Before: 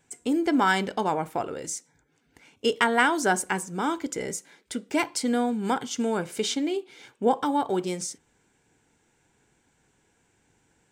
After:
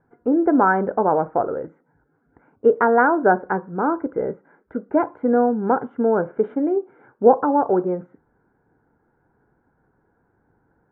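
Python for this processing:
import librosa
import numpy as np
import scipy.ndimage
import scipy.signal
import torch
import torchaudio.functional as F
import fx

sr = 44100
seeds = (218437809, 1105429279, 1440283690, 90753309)

y = scipy.signal.sosfilt(scipy.signal.ellip(4, 1.0, 70, 1500.0, 'lowpass', fs=sr, output='sos'), x)
y = fx.dynamic_eq(y, sr, hz=530.0, q=1.4, threshold_db=-39.0, ratio=4.0, max_db=7)
y = y * 10.0 ** (4.5 / 20.0)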